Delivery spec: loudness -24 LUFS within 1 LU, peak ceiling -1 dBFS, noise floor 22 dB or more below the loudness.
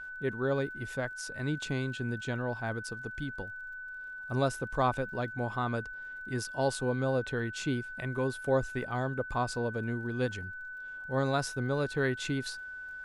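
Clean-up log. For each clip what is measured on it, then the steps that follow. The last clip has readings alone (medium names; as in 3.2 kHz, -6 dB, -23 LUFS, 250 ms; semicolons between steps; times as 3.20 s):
tick rate 39 per s; steady tone 1.5 kHz; tone level -40 dBFS; loudness -33.5 LUFS; peak level -15.0 dBFS; loudness target -24.0 LUFS
-> de-click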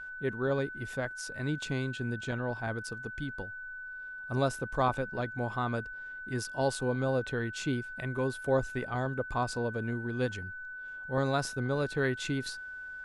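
tick rate 0 per s; steady tone 1.5 kHz; tone level -40 dBFS
-> band-stop 1.5 kHz, Q 30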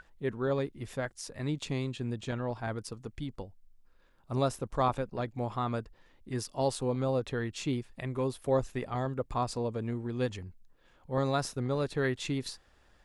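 steady tone not found; loudness -33.5 LUFS; peak level -15.5 dBFS; loudness target -24.0 LUFS
-> trim +9.5 dB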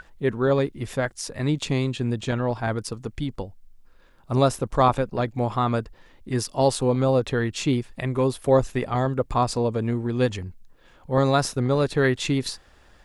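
loudness -24.0 LUFS; peak level -6.0 dBFS; noise floor -55 dBFS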